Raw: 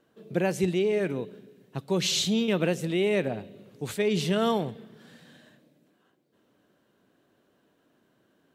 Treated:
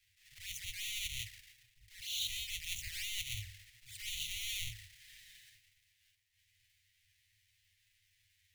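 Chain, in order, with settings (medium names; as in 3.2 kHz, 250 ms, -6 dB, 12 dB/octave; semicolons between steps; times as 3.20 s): square wave that keeps the level; Chebyshev band-stop 100–1900 Hz, order 5; hum notches 50/100 Hz; reverse; compression 20:1, threshold -34 dBFS, peak gain reduction 14.5 dB; reverse; touch-sensitive flanger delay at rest 10.7 ms, full sweep at -36 dBFS; on a send: tape echo 144 ms, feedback 88%, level -23 dB, low-pass 2.1 kHz; on the sum: attacks held to a fixed rise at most 100 dB/s; trim +2 dB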